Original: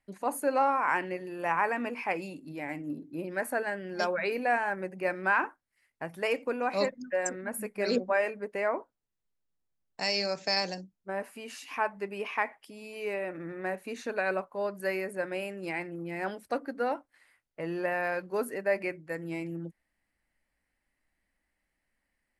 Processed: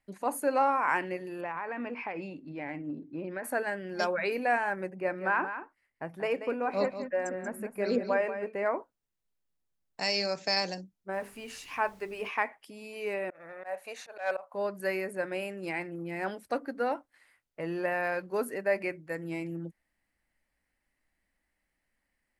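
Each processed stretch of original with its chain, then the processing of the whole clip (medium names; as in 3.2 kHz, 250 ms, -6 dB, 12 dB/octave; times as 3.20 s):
1.41–3.44 s: low-pass 3.1 kHz + compression 12:1, threshold -31 dBFS
4.90–8.66 s: treble shelf 2.7 kHz -11.5 dB + delay 184 ms -10 dB
11.12–12.28 s: hum notches 50/100/150/200/250/300/350/400/450 Hz + added noise pink -62 dBFS
13.30–14.54 s: overload inside the chain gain 22.5 dB + resonant low shelf 430 Hz -13 dB, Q 3 + slow attack 155 ms
whole clip: none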